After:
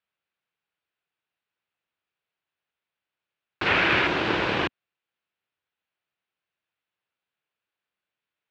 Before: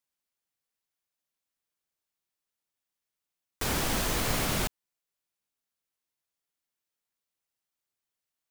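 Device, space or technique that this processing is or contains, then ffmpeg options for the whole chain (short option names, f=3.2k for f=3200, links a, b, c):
ring modulator pedal into a guitar cabinet: -filter_complex "[0:a]asettb=1/sr,asplit=3[a][b][c];[a]atrim=end=3.664[d];[b]atrim=start=3.66:end=4.07,asetpts=PTS-STARTPTS,afade=t=in:d=0.004:c=qsin,afade=t=out:st=0.406:d=0.004:c=qsin,equalizer=f=2k:t=o:w=0.81:g=12[e];[c]atrim=start=4.066[f];[d][e]acrossfade=d=0.004:c1=hsin:c2=qsin[g];[g][f]acrossfade=d=0.004:c1=qsin:c2=hsin,aeval=exprs='val(0)*sgn(sin(2*PI*330*n/s))':c=same,highpass=77,equalizer=f=250:t=q:w=4:g=-5,equalizer=f=1.5k:t=q:w=4:g=4,equalizer=f=2.6k:t=q:w=4:g=4,lowpass=f=3.6k:w=0.5412,lowpass=f=3.6k:w=1.3066,volume=4.5dB"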